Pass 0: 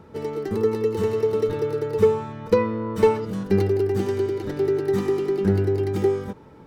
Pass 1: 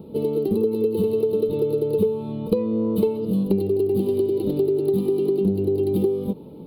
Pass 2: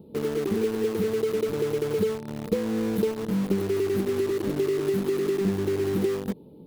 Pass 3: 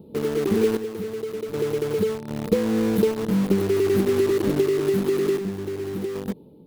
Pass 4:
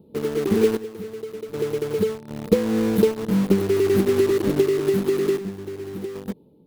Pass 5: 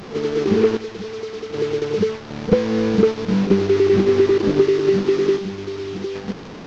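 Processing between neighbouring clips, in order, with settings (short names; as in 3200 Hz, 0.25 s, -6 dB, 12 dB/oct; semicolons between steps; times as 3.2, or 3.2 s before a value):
EQ curve 110 Hz 0 dB, 180 Hz +11 dB, 340 Hz +8 dB, 500 Hz +7 dB, 1200 Hz -9 dB, 1700 Hz -27 dB, 2700 Hz 0 dB, 4200 Hz +5 dB, 6100 Hz -24 dB, 11000 Hz +12 dB; compressor 6:1, threshold -18 dBFS, peak gain reduction 13 dB
bell 1600 Hz -8 dB 1.2 oct; in parallel at -6.5 dB: bit-crush 4-bit; on the sum: gain -7.5 dB
AGC gain up to 3.5 dB; random-step tremolo 1.3 Hz, depth 70%; gain +2.5 dB
upward expander 1.5:1, over -34 dBFS; gain +3.5 dB
delta modulation 32 kbps, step -32.5 dBFS; pre-echo 38 ms -12 dB; gain +3 dB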